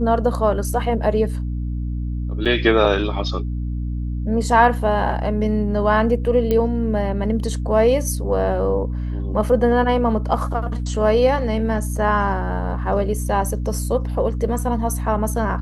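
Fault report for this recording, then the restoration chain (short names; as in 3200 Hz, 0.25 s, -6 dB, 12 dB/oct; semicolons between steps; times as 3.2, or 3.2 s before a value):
hum 60 Hz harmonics 5 -24 dBFS
2.45–2.46 gap 6.4 ms
6.51 pop -9 dBFS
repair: de-click; de-hum 60 Hz, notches 5; interpolate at 2.45, 6.4 ms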